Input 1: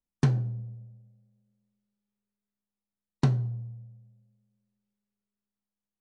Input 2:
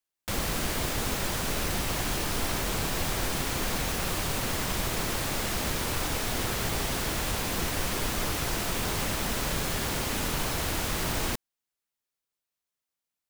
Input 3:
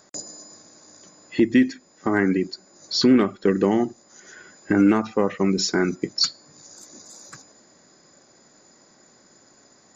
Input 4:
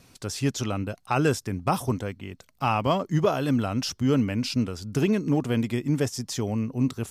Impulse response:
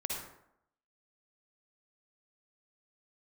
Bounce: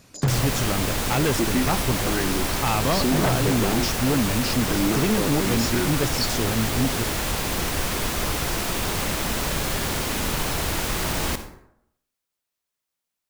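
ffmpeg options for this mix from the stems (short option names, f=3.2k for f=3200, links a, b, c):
-filter_complex "[0:a]volume=-0.5dB,asplit=2[a][b];[b]volume=-7.5dB[c];[1:a]volume=1.5dB,asplit=2[d][e];[e]volume=-8dB[f];[2:a]volume=-6.5dB[g];[3:a]volume=1.5dB[h];[4:a]atrim=start_sample=2205[i];[c][f]amix=inputs=2:normalize=0[j];[j][i]afir=irnorm=-1:irlink=0[k];[a][d][g][h][k]amix=inputs=5:normalize=0,aeval=exprs='0.188*(abs(mod(val(0)/0.188+3,4)-2)-1)':c=same"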